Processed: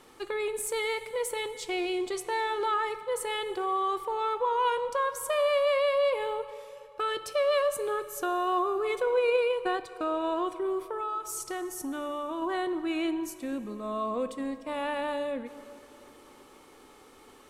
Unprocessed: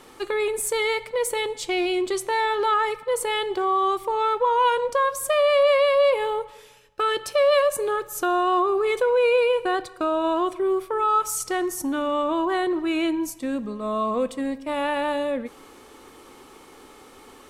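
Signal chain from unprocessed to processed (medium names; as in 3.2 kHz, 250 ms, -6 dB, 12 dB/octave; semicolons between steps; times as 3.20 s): 10.89–12.42 s: compression, threshold -24 dBFS, peak gain reduction 7.5 dB; plate-style reverb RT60 3.3 s, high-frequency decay 0.75×, DRR 13.5 dB; 9.04–9.88 s: transient shaper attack +8 dB, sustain -2 dB; trim -7 dB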